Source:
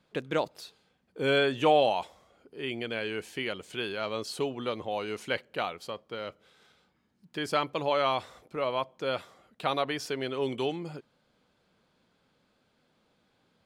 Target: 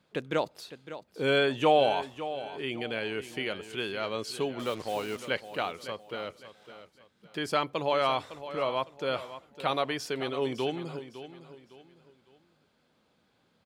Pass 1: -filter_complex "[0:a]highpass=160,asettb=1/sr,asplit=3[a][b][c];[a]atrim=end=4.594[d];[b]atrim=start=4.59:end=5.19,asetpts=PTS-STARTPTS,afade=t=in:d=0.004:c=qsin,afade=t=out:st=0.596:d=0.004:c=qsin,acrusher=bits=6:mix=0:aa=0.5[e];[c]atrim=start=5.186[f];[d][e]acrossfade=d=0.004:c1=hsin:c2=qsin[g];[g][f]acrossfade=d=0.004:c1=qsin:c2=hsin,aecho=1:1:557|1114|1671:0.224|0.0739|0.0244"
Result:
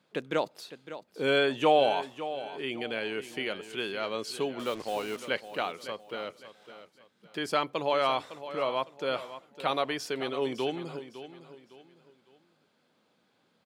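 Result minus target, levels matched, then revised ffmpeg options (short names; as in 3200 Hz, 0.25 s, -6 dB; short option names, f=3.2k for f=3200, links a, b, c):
125 Hz band -4.0 dB
-filter_complex "[0:a]highpass=42,asettb=1/sr,asplit=3[a][b][c];[a]atrim=end=4.594[d];[b]atrim=start=4.59:end=5.19,asetpts=PTS-STARTPTS,afade=t=in:d=0.004:c=qsin,afade=t=out:st=0.596:d=0.004:c=qsin,acrusher=bits=6:mix=0:aa=0.5[e];[c]atrim=start=5.186[f];[d][e]acrossfade=d=0.004:c1=hsin:c2=qsin[g];[g][f]acrossfade=d=0.004:c1=qsin:c2=hsin,aecho=1:1:557|1114|1671:0.224|0.0739|0.0244"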